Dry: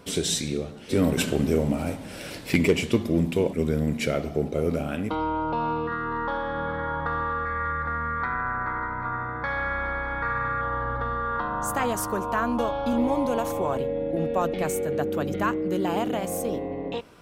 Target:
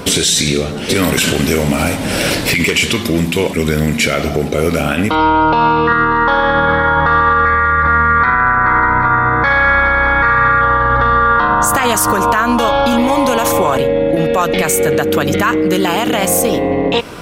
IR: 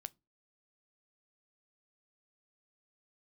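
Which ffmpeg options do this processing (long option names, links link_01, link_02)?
-filter_complex "[0:a]acrossover=split=1200[link_01][link_02];[link_01]acompressor=threshold=-34dB:ratio=6[link_03];[link_03][link_02]amix=inputs=2:normalize=0,alimiter=level_in=25dB:limit=-1dB:release=50:level=0:latency=1,volume=-2.5dB"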